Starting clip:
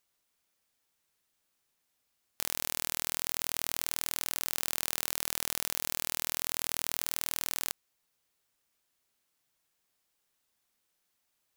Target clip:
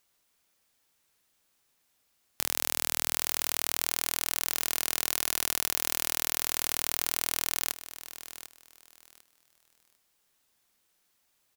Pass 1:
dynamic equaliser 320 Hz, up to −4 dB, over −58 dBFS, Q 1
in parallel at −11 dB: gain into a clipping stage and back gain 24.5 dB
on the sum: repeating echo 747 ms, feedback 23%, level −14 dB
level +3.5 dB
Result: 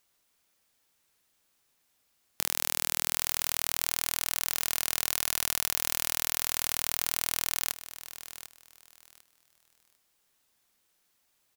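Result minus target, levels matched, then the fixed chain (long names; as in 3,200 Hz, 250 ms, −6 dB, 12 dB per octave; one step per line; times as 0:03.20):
250 Hz band −3.0 dB
dynamic equaliser 100 Hz, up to −4 dB, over −58 dBFS, Q 1
in parallel at −11 dB: gain into a clipping stage and back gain 24.5 dB
on the sum: repeating echo 747 ms, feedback 23%, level −14 dB
level +3.5 dB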